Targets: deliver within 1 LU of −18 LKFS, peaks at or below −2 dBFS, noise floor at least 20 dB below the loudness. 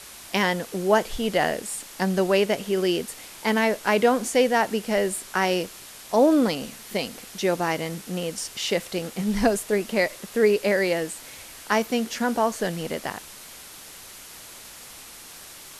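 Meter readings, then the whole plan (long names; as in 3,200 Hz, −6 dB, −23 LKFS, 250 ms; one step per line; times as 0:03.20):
background noise floor −44 dBFS; target noise floor −45 dBFS; integrated loudness −24.5 LKFS; sample peak −6.5 dBFS; target loudness −18.0 LKFS
→ broadband denoise 6 dB, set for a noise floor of −44 dBFS
level +6.5 dB
brickwall limiter −2 dBFS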